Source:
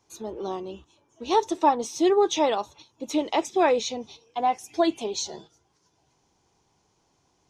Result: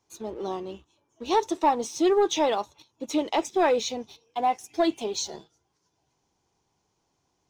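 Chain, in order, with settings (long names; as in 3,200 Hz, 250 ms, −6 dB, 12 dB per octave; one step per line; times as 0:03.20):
leveller curve on the samples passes 1
level −4 dB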